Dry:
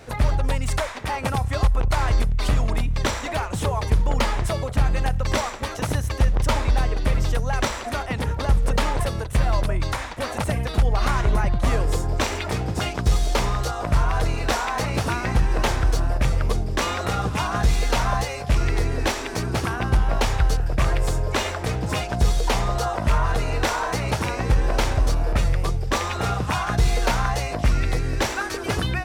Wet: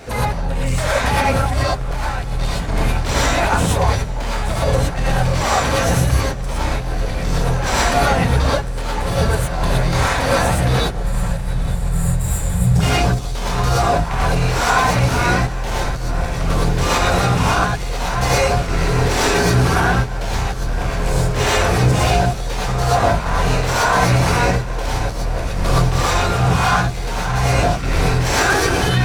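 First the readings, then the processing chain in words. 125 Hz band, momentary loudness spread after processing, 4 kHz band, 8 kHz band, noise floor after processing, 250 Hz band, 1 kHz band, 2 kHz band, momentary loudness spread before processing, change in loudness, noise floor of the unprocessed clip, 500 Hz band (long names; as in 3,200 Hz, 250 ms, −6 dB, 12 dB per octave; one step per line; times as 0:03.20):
+6.0 dB, 8 LU, +6.5 dB, +8.0 dB, −23 dBFS, +6.5 dB, +7.5 dB, +8.0 dB, 4 LU, +6.0 dB, −31 dBFS, +7.5 dB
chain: soft clipping −22.5 dBFS, distortion −9 dB
gain on a spectral selection 0:10.91–0:12.75, 210–6,900 Hz −25 dB
on a send: feedback delay with all-pass diffusion 869 ms, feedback 55%, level −11 dB
on the sum: compressor whose output falls as the input rises −28 dBFS, ratio −0.5
reverb whose tail is shaped and stops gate 140 ms rising, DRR −7.5 dB
level +4 dB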